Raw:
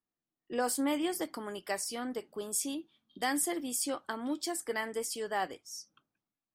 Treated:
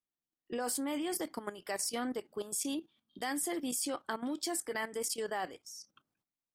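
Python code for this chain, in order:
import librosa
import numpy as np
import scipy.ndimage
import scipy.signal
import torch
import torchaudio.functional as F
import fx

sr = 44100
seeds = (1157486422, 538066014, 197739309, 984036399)

y = fx.level_steps(x, sr, step_db=13)
y = y * librosa.db_to_amplitude(4.0)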